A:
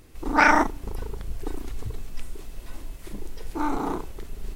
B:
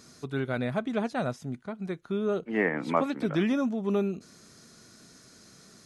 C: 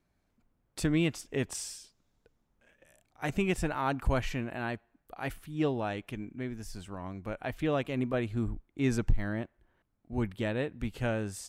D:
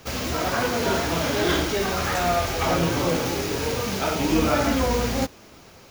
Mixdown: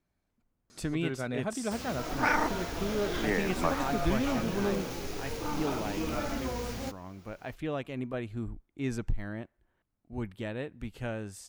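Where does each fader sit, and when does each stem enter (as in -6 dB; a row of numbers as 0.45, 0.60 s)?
-10.0, -4.5, -4.5, -13.0 dB; 1.85, 0.70, 0.00, 1.65 s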